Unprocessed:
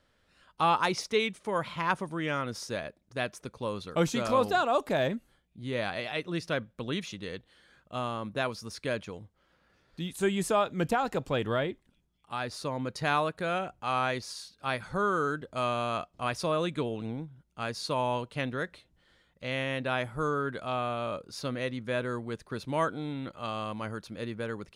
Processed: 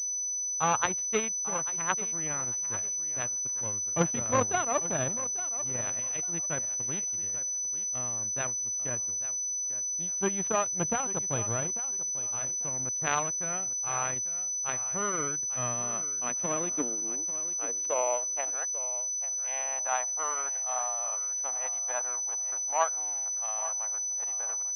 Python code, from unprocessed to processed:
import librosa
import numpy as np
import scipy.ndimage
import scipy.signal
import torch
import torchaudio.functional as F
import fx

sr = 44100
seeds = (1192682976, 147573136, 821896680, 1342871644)

p1 = fx.power_curve(x, sr, exponent=2.0)
p2 = fx.filter_sweep_highpass(p1, sr, from_hz=95.0, to_hz=780.0, start_s=15.1, end_s=18.62, q=3.5)
p3 = p2 + fx.echo_thinned(p2, sr, ms=843, feedback_pct=25, hz=200.0, wet_db=-14, dry=0)
p4 = fx.pwm(p3, sr, carrier_hz=6000.0)
y = p4 * 10.0 ** (4.5 / 20.0)